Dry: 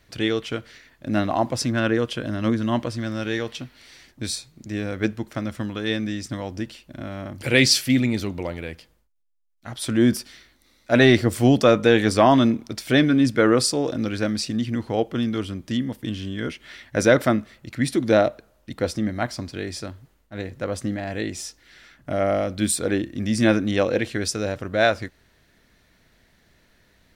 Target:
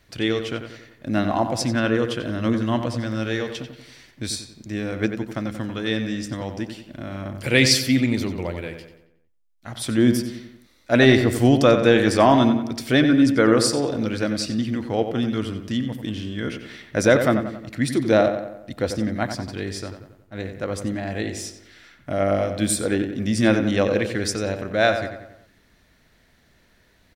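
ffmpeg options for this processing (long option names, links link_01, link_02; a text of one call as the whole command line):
ffmpeg -i in.wav -filter_complex "[0:a]asplit=2[link_01][link_02];[link_02]adelay=91,lowpass=frequency=3300:poles=1,volume=-8dB,asplit=2[link_03][link_04];[link_04]adelay=91,lowpass=frequency=3300:poles=1,volume=0.51,asplit=2[link_05][link_06];[link_06]adelay=91,lowpass=frequency=3300:poles=1,volume=0.51,asplit=2[link_07][link_08];[link_08]adelay=91,lowpass=frequency=3300:poles=1,volume=0.51,asplit=2[link_09][link_10];[link_10]adelay=91,lowpass=frequency=3300:poles=1,volume=0.51,asplit=2[link_11][link_12];[link_12]adelay=91,lowpass=frequency=3300:poles=1,volume=0.51[link_13];[link_01][link_03][link_05][link_07][link_09][link_11][link_13]amix=inputs=7:normalize=0" out.wav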